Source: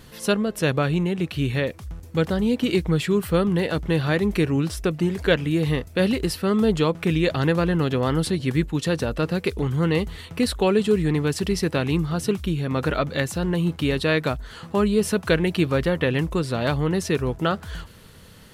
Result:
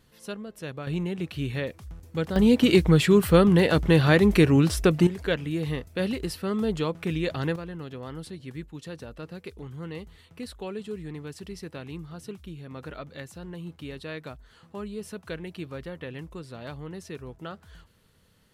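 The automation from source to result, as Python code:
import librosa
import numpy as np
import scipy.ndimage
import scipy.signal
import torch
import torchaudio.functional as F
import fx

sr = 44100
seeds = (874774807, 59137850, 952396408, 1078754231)

y = fx.gain(x, sr, db=fx.steps((0.0, -15.0), (0.87, -6.5), (2.36, 3.0), (5.07, -7.0), (7.56, -16.0)))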